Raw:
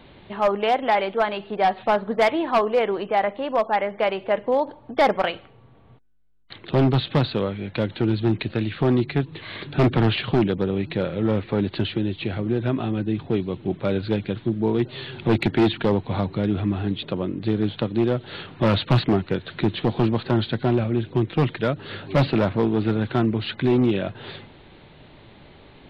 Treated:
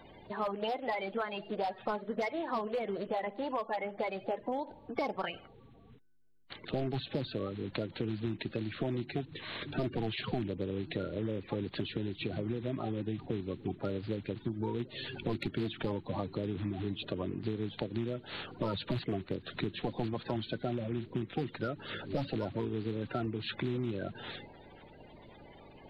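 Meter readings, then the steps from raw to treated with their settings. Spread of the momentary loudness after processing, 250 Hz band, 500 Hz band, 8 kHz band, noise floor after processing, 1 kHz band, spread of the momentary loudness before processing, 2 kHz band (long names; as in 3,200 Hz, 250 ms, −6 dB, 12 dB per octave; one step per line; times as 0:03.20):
5 LU, −13.5 dB, −13.5 dB, can't be measured, −56 dBFS, −14.0 dB, 7 LU, −12.5 dB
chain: spectral magnitudes quantised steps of 30 dB
downward compressor 6 to 1, threshold −26 dBFS, peak gain reduction 11.5 dB
level −5.5 dB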